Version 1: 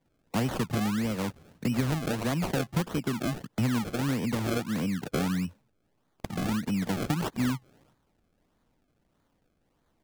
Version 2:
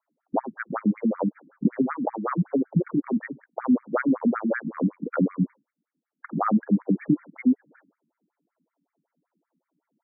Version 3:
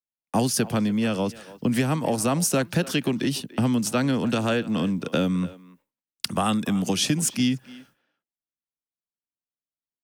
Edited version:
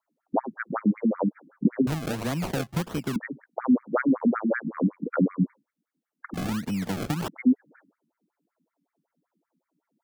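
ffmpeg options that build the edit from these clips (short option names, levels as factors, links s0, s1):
-filter_complex "[0:a]asplit=2[s0][s1];[1:a]asplit=3[s2][s3][s4];[s2]atrim=end=1.872[s5];[s0]atrim=start=1.868:end=3.162[s6];[s3]atrim=start=3.158:end=6.342[s7];[s1]atrim=start=6.338:end=7.282[s8];[s4]atrim=start=7.278[s9];[s5][s6]acrossfade=d=0.004:c1=hsin:c2=hsin[s10];[s10][s7]acrossfade=d=0.004:c1=hsin:c2=hsin[s11];[s11][s8]acrossfade=d=0.004:c1=hsin:c2=hsin[s12];[s12][s9]acrossfade=d=0.004:c1=hsin:c2=hsin"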